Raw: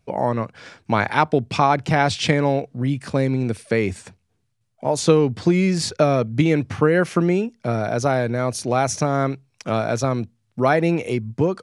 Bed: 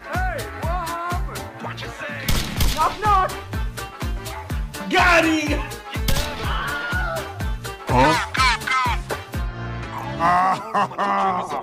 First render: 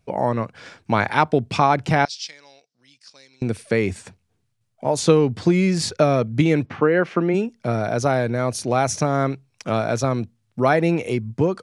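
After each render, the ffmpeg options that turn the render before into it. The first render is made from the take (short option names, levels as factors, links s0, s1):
-filter_complex "[0:a]asettb=1/sr,asplit=3[s0][s1][s2];[s0]atrim=end=2.054[s3];[s1]atrim=start=2.05:end=3.42,asetpts=PTS-STARTPTS,afade=t=in:d=0.004:c=qsin,afade=t=out:st=1.366:d=0.004:c=qsin,bandpass=f=5200:t=q:w=3.9[s4];[s2]atrim=start=3.416[s5];[s3][s4]acrossfade=d=0.004:c1=hsin:c2=qsin[s6];[s6][s5]acrossfade=d=0.004:c1=qsin:c2=hsin,asplit=3[s7][s8][s9];[s7]afade=t=out:st=6.65:d=0.02[s10];[s8]highpass=200,lowpass=3000,afade=t=in:st=6.65:d=0.02,afade=t=out:st=7.33:d=0.02[s11];[s9]afade=t=in:st=7.33:d=0.02[s12];[s10][s11][s12]amix=inputs=3:normalize=0"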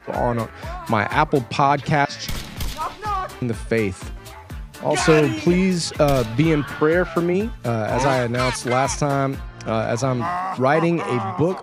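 -filter_complex "[1:a]volume=0.422[s0];[0:a][s0]amix=inputs=2:normalize=0"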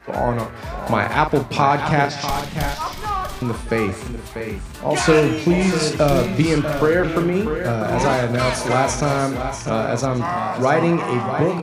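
-filter_complex "[0:a]asplit=2[s0][s1];[s1]adelay=41,volume=0.355[s2];[s0][s2]amix=inputs=2:normalize=0,asplit=2[s3][s4];[s4]aecho=0:1:173|643|689:0.15|0.335|0.251[s5];[s3][s5]amix=inputs=2:normalize=0"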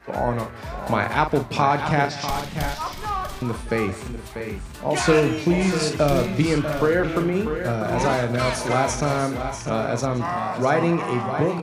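-af "volume=0.708"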